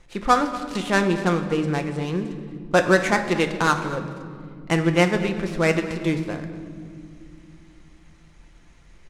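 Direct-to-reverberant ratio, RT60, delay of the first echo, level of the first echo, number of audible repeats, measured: 5.0 dB, 2.3 s, 234 ms, -17.0 dB, 1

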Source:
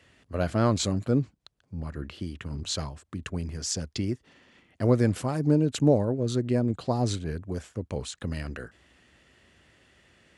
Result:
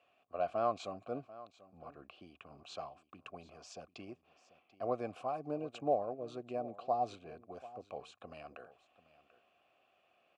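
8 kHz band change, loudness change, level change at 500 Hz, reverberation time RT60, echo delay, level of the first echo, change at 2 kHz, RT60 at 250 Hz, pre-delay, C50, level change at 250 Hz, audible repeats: under -25 dB, -11.5 dB, -9.0 dB, no reverb, 739 ms, -18.0 dB, -14.0 dB, no reverb, no reverb, no reverb, -20.0 dB, 1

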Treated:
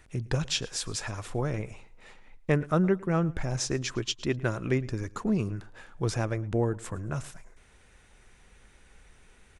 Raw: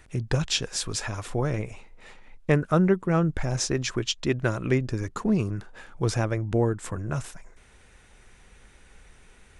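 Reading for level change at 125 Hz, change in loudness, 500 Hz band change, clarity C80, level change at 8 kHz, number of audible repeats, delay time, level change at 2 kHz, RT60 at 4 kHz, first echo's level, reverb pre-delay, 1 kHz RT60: -3.5 dB, -3.5 dB, -3.5 dB, no reverb, -3.5 dB, 2, 110 ms, -3.5 dB, no reverb, -21.5 dB, no reverb, no reverb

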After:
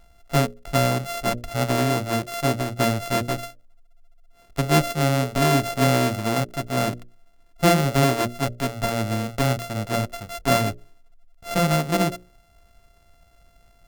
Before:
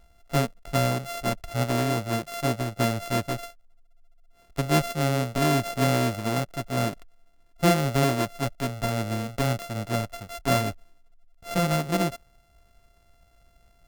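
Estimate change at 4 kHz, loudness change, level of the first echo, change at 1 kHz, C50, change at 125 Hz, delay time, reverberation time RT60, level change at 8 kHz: +4.0 dB, +3.5 dB, no echo, +4.0 dB, no reverb, +3.0 dB, no echo, no reverb, +4.0 dB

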